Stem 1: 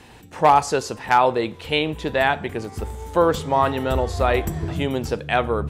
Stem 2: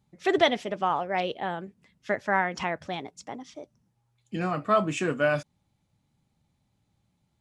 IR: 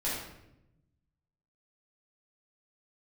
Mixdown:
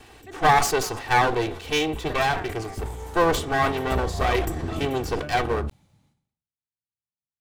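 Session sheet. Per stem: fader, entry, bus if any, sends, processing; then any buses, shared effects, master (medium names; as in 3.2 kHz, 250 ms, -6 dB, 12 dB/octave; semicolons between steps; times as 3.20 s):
-1.0 dB, 0.00 s, no send, comb filter that takes the minimum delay 2.6 ms
-20.0 dB, 0.00 s, no send, bass shelf 70 Hz -8.5 dB; three bands expanded up and down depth 40%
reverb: none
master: decay stretcher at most 92 dB/s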